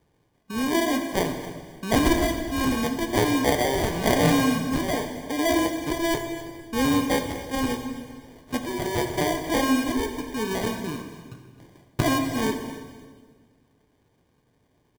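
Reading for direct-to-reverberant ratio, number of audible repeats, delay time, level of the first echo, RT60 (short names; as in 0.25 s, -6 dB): 4.5 dB, 2, 0.264 s, -16.5 dB, 1.6 s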